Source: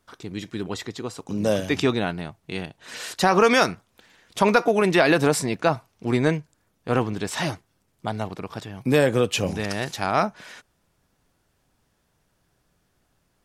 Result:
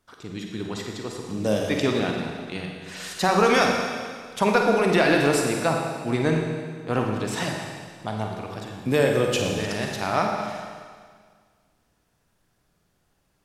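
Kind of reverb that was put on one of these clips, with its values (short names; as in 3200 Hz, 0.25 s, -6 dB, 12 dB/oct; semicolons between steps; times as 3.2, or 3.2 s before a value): Schroeder reverb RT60 1.8 s, DRR 1 dB; gain -3 dB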